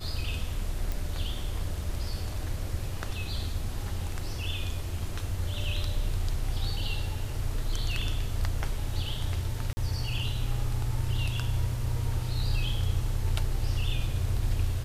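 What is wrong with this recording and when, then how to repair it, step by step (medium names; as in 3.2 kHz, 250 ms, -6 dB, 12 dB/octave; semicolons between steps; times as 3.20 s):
0.92 s: pop
9.73–9.77 s: dropout 40 ms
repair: de-click; interpolate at 9.73 s, 40 ms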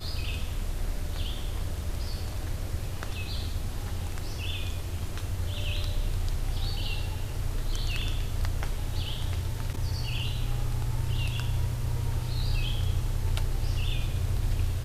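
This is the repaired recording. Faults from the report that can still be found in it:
nothing left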